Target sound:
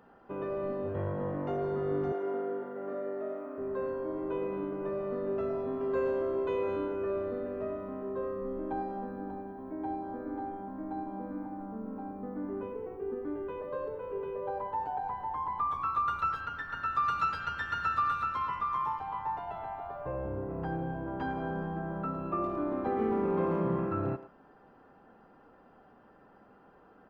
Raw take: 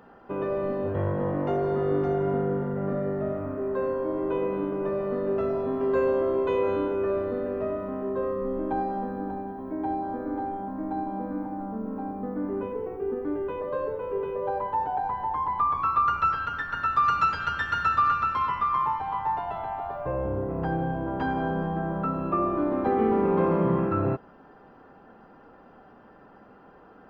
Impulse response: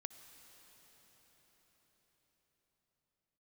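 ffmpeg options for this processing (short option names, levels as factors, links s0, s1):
-filter_complex "[0:a]asettb=1/sr,asplit=3[s0][s1][s2];[s0]atrim=end=2.124[s3];[s1]atrim=start=2.12:end=3.58,asetpts=PTS-STARTPTS,afade=t=in:d=0.004:c=qsin,afade=t=out:st=1.456:d=0.004:c=qsin,highpass=f=280:w=0.5412,highpass=f=280:w=1.3066[s4];[s2]atrim=start=3.576[s5];[s3][s4]acrossfade=d=0.004:c1=hsin:c2=qsin[s6];[s6][s5]acrossfade=d=0.004:c1=qsin:c2=hsin,asplit=2[s7][s8];[s8]adelay=110,highpass=300,lowpass=3400,asoftclip=type=hard:threshold=0.1,volume=0.224[s9];[s7][s9]amix=inputs=2:normalize=0,volume=0.447"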